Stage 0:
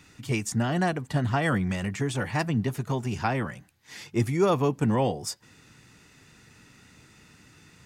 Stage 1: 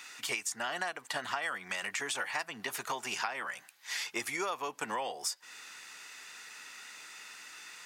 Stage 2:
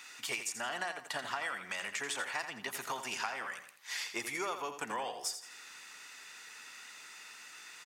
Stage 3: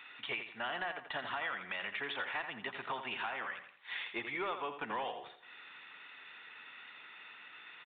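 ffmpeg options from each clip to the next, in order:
-af "highpass=960,acompressor=threshold=-41dB:ratio=10,volume=9dB"
-af "aecho=1:1:84|168|252|336:0.335|0.127|0.0484|0.0184,volume=-2.5dB"
-af "aresample=16000,asoftclip=type=hard:threshold=-30.5dB,aresample=44100,aresample=8000,aresample=44100"

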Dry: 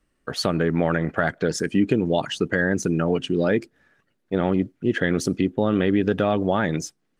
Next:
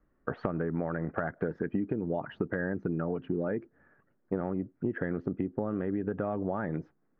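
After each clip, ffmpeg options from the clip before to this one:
-af "lowpass=f=1.6k:w=0.5412,lowpass=f=1.6k:w=1.3066,acompressor=threshold=-27dB:ratio=12"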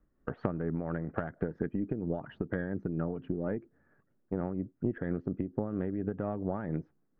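-af "aeval=exprs='0.224*(cos(1*acos(clip(val(0)/0.224,-1,1)))-cos(1*PI/2))+0.0501*(cos(2*acos(clip(val(0)/0.224,-1,1)))-cos(2*PI/2))':c=same,tremolo=f=4.3:d=0.41,lowshelf=f=410:g=7,volume=-5dB"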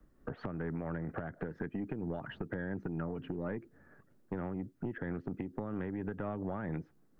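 -filter_complex "[0:a]acrossover=split=130|1500[a][b][c];[a]acompressor=threshold=-53dB:ratio=4[d];[b]acompressor=threshold=-43dB:ratio=4[e];[c]acompressor=threshold=-52dB:ratio=4[f];[d][e][f]amix=inputs=3:normalize=0,acrossover=split=740[g][h];[g]asoftclip=type=tanh:threshold=-37dB[i];[h]alimiter=level_in=19dB:limit=-24dB:level=0:latency=1:release=79,volume=-19dB[j];[i][j]amix=inputs=2:normalize=0,volume=7.5dB"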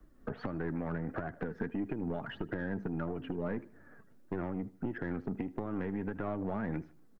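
-filter_complex "[0:a]asplit=2[a][b];[b]asoftclip=type=tanh:threshold=-36dB,volume=-7dB[c];[a][c]amix=inputs=2:normalize=0,flanger=delay=2.6:depth=2.3:regen=53:speed=1.6:shape=triangular,aecho=1:1:78|156|234:0.1|0.037|0.0137,volume=4dB"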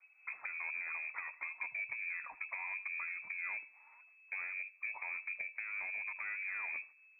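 -af "lowpass=f=2.2k:t=q:w=0.5098,lowpass=f=2.2k:t=q:w=0.6013,lowpass=f=2.2k:t=q:w=0.9,lowpass=f=2.2k:t=q:w=2.563,afreqshift=-2600,volume=-5.5dB"

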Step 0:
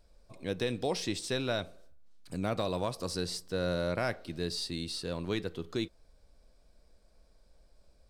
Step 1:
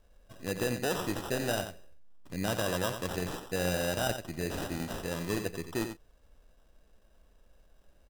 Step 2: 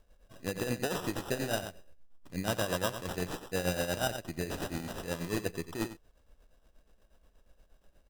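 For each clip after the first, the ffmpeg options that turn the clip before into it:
-af "acrusher=samples=20:mix=1:aa=0.000001,equalizer=f=12k:t=o:w=2.8:g=3.5,aecho=1:1:89:0.376"
-af "tremolo=f=8.4:d=0.67,volume=1.5dB"

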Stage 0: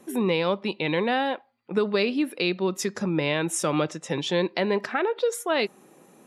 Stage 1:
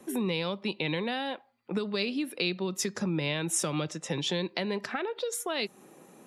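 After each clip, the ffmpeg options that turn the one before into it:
-filter_complex "[0:a]acrossover=split=170|3000[a][b][c];[b]acompressor=threshold=-31dB:ratio=6[d];[a][d][c]amix=inputs=3:normalize=0"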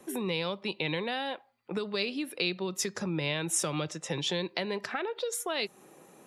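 -af "equalizer=f=230:w=1.8:g=-5.5"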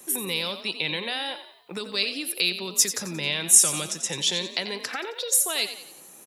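-filter_complex "[0:a]crystalizer=i=6:c=0,asplit=2[a][b];[b]asplit=5[c][d][e][f][g];[c]adelay=89,afreqshift=41,volume=-11dB[h];[d]adelay=178,afreqshift=82,volume=-18.1dB[i];[e]adelay=267,afreqshift=123,volume=-25.3dB[j];[f]adelay=356,afreqshift=164,volume=-32.4dB[k];[g]adelay=445,afreqshift=205,volume=-39.5dB[l];[h][i][j][k][l]amix=inputs=5:normalize=0[m];[a][m]amix=inputs=2:normalize=0,volume=-2.5dB"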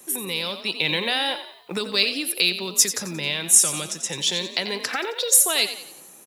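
-af "dynaudnorm=f=320:g=5:m=8dB,acrusher=bits=8:mode=log:mix=0:aa=0.000001"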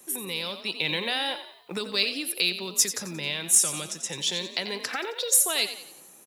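-af "asoftclip=type=hard:threshold=-5dB,volume=-4.5dB"

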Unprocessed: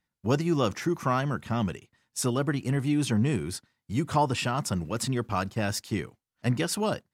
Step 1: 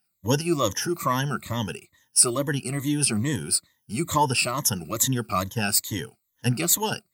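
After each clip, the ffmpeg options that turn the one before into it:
-af "afftfilt=real='re*pow(10,17/40*sin(2*PI*(1.1*log(max(b,1)*sr/1024/100)/log(2)-(-2.3)*(pts-256)/sr)))':imag='im*pow(10,17/40*sin(2*PI*(1.1*log(max(b,1)*sr/1024/100)/log(2)-(-2.3)*(pts-256)/sr)))':win_size=1024:overlap=0.75,aemphasis=mode=production:type=75fm,volume=-1.5dB"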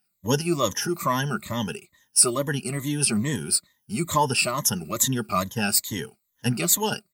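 -af "aecho=1:1:4.9:0.36"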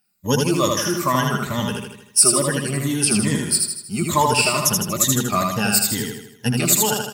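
-af "aecho=1:1:79|158|237|316|395|474|553:0.708|0.354|0.177|0.0885|0.0442|0.0221|0.0111,volume=3dB"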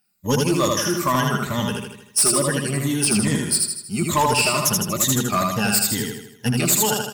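-af "asoftclip=type=hard:threshold=-13dB"

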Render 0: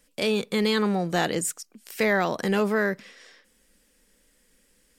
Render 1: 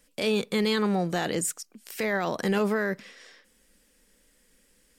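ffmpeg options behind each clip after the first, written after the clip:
-af "alimiter=limit=-18dB:level=0:latency=1:release=23"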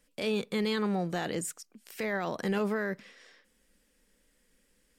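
-af "bass=f=250:g=1,treble=f=4k:g=-3,volume=-5dB"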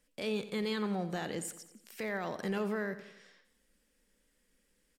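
-af "aecho=1:1:88|176|264|352|440:0.2|0.104|0.054|0.0281|0.0146,volume=-4.5dB"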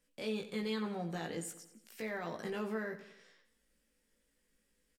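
-filter_complex "[0:a]asplit=2[a][b];[b]adelay=18,volume=-3.5dB[c];[a][c]amix=inputs=2:normalize=0,volume=-5dB"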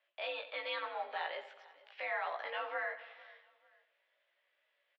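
-af "aecho=1:1:448|896:0.0841|0.0278,highpass=f=560:t=q:w=0.5412,highpass=f=560:t=q:w=1.307,lowpass=f=3.5k:t=q:w=0.5176,lowpass=f=3.5k:t=q:w=0.7071,lowpass=f=3.5k:t=q:w=1.932,afreqshift=73,volume=5.5dB"

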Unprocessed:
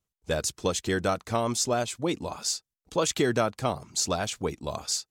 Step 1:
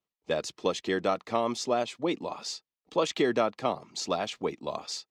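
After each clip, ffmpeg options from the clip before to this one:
-filter_complex "[0:a]acrossover=split=180 4800:gain=0.0891 1 0.112[a][b][c];[a][b][c]amix=inputs=3:normalize=0,bandreject=f=1.5k:w=7"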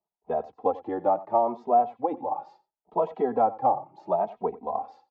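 -filter_complex "[0:a]lowpass=f=810:t=q:w=7.4,aecho=1:1:90:0.126,asplit=2[a][b];[b]adelay=2.8,afreqshift=0.72[c];[a][c]amix=inputs=2:normalize=1"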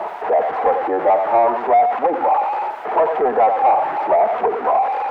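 -filter_complex "[0:a]aeval=exprs='val(0)+0.5*0.0316*sgn(val(0))':c=same,asplit=2[a][b];[b]highpass=f=720:p=1,volume=22dB,asoftclip=type=tanh:threshold=-9dB[c];[a][c]amix=inputs=2:normalize=0,lowpass=f=1k:p=1,volume=-6dB,acrossover=split=400 2300:gain=0.178 1 0.0631[d][e][f];[d][e][f]amix=inputs=3:normalize=0,volume=5dB"

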